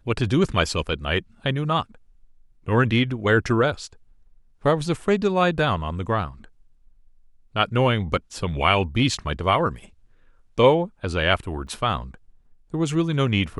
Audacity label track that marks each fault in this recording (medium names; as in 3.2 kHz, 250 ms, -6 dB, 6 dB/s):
11.670000	11.670000	dropout 3.8 ms